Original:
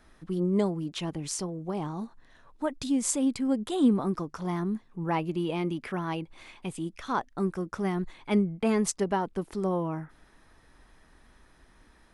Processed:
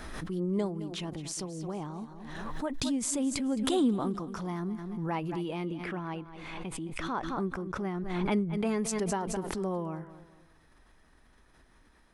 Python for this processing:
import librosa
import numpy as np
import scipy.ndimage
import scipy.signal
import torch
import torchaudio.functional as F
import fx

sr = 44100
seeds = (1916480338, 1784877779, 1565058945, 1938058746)

y = fx.high_shelf(x, sr, hz=4500.0, db=-12.0, at=(5.65, 8.32))
y = fx.echo_feedback(y, sr, ms=216, feedback_pct=34, wet_db=-14.5)
y = fx.pre_swell(y, sr, db_per_s=31.0)
y = y * 10.0 ** (-5.0 / 20.0)